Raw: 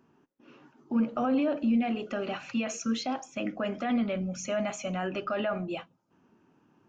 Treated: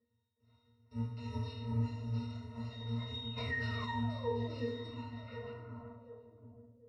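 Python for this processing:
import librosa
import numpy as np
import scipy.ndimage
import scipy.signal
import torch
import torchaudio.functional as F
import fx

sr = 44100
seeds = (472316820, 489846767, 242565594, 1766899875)

p1 = fx.bit_reversed(x, sr, seeds[0], block=256)
p2 = fx.dereverb_blind(p1, sr, rt60_s=1.0)
p3 = fx.level_steps(p2, sr, step_db=20)
p4 = p2 + (p3 * 10.0 ** (-1.0 / 20.0))
p5 = fx.spec_paint(p4, sr, seeds[1], shape='fall', start_s=3.13, length_s=1.49, low_hz=240.0, high_hz=3800.0, level_db=-41.0)
p6 = fx.rev_fdn(p5, sr, rt60_s=0.92, lf_ratio=1.35, hf_ratio=0.9, size_ms=14.0, drr_db=-10.0)
p7 = fx.dynamic_eq(p6, sr, hz=660.0, q=0.77, threshold_db=-40.0, ratio=4.0, max_db=5)
p8 = fx.octave_resonator(p7, sr, note='A#', decay_s=0.36)
p9 = fx.echo_alternate(p8, sr, ms=365, hz=2400.0, feedback_pct=66, wet_db=-3.5)
p10 = fx.filter_sweep_lowpass(p9, sr, from_hz=4300.0, to_hz=390.0, start_s=4.87, end_s=6.8, q=1.2)
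p11 = fx.env_flatten(p10, sr, amount_pct=50, at=(3.36, 3.85), fade=0.02)
y = p11 * 10.0 ** (2.5 / 20.0)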